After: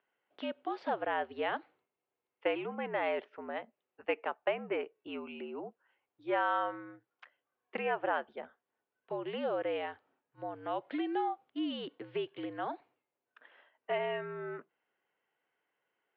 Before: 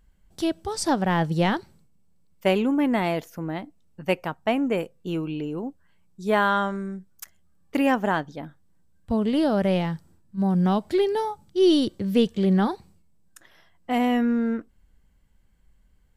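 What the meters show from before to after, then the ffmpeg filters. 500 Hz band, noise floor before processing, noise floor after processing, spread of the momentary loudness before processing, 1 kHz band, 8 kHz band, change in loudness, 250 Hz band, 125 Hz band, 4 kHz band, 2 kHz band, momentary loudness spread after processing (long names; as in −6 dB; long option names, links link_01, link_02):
−10.0 dB, −60 dBFS, below −85 dBFS, 13 LU, −8.5 dB, can't be measured, −12.5 dB, −18.5 dB, −26.0 dB, −12.5 dB, −8.0 dB, 12 LU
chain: -af "acompressor=threshold=-22dB:ratio=5,highpass=frequency=450:width_type=q:width=0.5412,highpass=frequency=450:width_type=q:width=1.307,lowpass=frequency=3100:width_type=q:width=0.5176,lowpass=frequency=3100:width_type=q:width=0.7071,lowpass=frequency=3100:width_type=q:width=1.932,afreqshift=-69,volume=-3.5dB"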